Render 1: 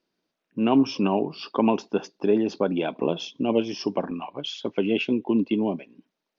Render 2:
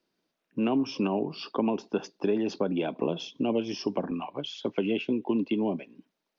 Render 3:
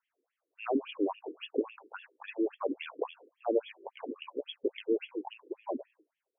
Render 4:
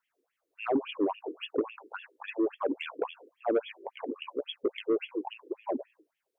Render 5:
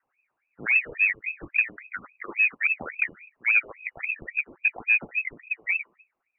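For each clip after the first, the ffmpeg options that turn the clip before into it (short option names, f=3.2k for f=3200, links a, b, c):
-filter_complex "[0:a]acrossover=split=250|630[a][b][c];[a]acompressor=threshold=-32dB:ratio=4[d];[b]acompressor=threshold=-28dB:ratio=4[e];[c]acompressor=threshold=-36dB:ratio=4[f];[d][e][f]amix=inputs=3:normalize=0"
-af "afftfilt=real='re*between(b*sr/1024,360*pow(2500/360,0.5+0.5*sin(2*PI*3.6*pts/sr))/1.41,360*pow(2500/360,0.5+0.5*sin(2*PI*3.6*pts/sr))*1.41)':imag='im*between(b*sr/1024,360*pow(2500/360,0.5+0.5*sin(2*PI*3.6*pts/sr))/1.41,360*pow(2500/360,0.5+0.5*sin(2*PI*3.6*pts/sr))*1.41)':win_size=1024:overlap=0.75,volume=2dB"
-af "asoftclip=type=tanh:threshold=-22.5dB,volume=4dB"
-af "lowpass=f=2.5k:t=q:w=0.5098,lowpass=f=2.5k:t=q:w=0.6013,lowpass=f=2.5k:t=q:w=0.9,lowpass=f=2.5k:t=q:w=2.563,afreqshift=-2900,volume=6dB"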